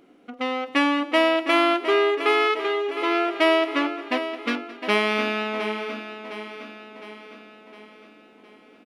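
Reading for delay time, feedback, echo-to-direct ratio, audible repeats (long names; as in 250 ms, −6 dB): 216 ms, repeats not evenly spaced, −8.5 dB, 8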